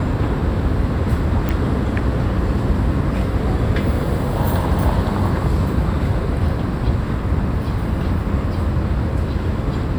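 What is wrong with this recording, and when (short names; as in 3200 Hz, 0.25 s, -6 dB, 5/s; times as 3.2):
1.49 pop -9 dBFS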